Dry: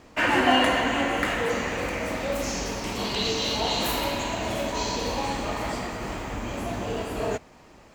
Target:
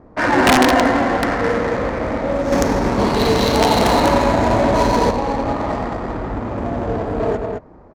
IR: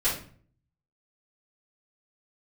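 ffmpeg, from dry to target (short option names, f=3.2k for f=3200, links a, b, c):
-filter_complex "[0:a]equalizer=f=2.9k:w=2:g=-14,aecho=1:1:90.38|212.8:0.398|0.631,asettb=1/sr,asplit=3[a][b][c];[a]atrim=end=2.524[d];[b]atrim=start=2.52:end=5.11,asetpts=PTS-STARTPTS,afade=t=in:d=0.004:c=qsin,afade=t=out:st=2.586:d=0.004:c=qsin,acontrast=32[e];[c]atrim=start=5.106[f];[d][e]acrossfade=d=0.004:c1=hsin:c2=qsin[g];[g][f]acrossfade=d=0.004:c1=qsin:c2=hsin,aeval=exprs='(mod(3.55*val(0)+1,2)-1)/3.55':c=same,adynamicsmooth=sensitivity=2.5:basefreq=1.1k,volume=7.5dB"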